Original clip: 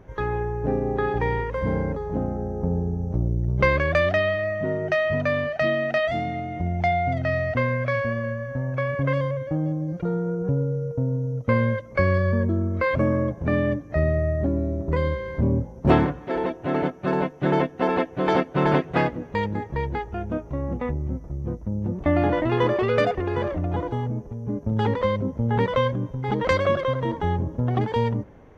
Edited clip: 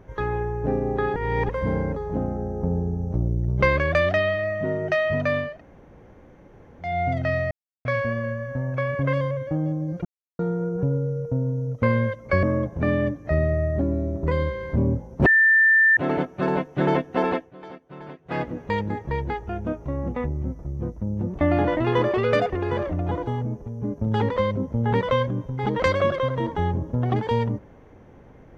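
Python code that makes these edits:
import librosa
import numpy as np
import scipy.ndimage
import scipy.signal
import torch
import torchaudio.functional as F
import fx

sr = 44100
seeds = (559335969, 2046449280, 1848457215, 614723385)

y = fx.edit(x, sr, fx.reverse_span(start_s=1.16, length_s=0.33),
    fx.room_tone_fill(start_s=5.49, length_s=1.41, crossfade_s=0.24),
    fx.silence(start_s=7.51, length_s=0.34),
    fx.insert_silence(at_s=10.05, length_s=0.34),
    fx.cut(start_s=12.09, length_s=0.99),
    fx.bleep(start_s=15.91, length_s=0.71, hz=1780.0, db=-13.0),
    fx.fade_down_up(start_s=17.93, length_s=1.22, db=-20.0, fade_s=0.25), tone=tone)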